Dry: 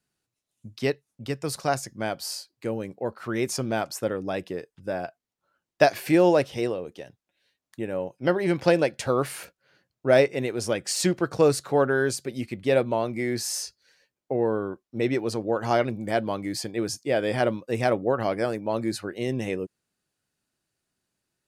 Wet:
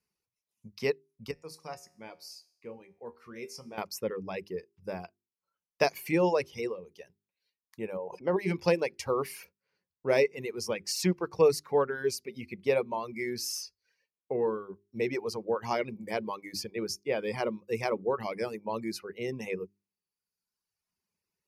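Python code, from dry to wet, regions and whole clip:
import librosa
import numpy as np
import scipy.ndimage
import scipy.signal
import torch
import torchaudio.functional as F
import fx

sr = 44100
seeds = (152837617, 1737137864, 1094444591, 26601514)

y = fx.chain(x, sr, fx.lowpass(hz=12000.0, slope=12),
    fx.comb_fb(f0_hz=79.0, decay_s=0.66, harmonics='all', damping=0.0, mix_pct=80), at=(1.31, 3.78))
y = fx.chain(y, sr, fx.bandpass_q(hz=550.0, q=0.65),
    fx.sustainer(db_per_s=36.0), at=(7.97, 8.37))
y = fx.hum_notches(y, sr, base_hz=50, count=8)
y = fx.dereverb_blind(y, sr, rt60_s=1.3)
y = fx.ripple_eq(y, sr, per_octave=0.83, db=9)
y = y * librosa.db_to_amplitude(-5.5)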